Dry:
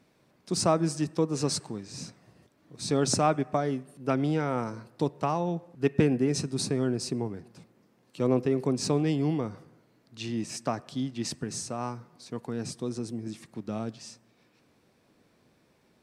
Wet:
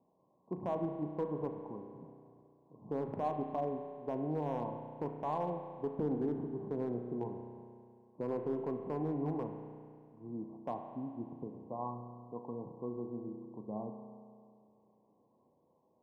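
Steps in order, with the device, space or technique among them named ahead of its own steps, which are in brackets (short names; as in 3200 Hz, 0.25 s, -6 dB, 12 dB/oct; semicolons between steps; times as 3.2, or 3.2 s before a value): Chebyshev low-pass 1100 Hz, order 10; tilt +3.5 dB/oct; limiter into clipper (limiter -24 dBFS, peak gain reduction 7.5 dB; hard clip -26 dBFS, distortion -24 dB); spring tank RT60 2.2 s, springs 33 ms, chirp 50 ms, DRR 5 dB; gain -2.5 dB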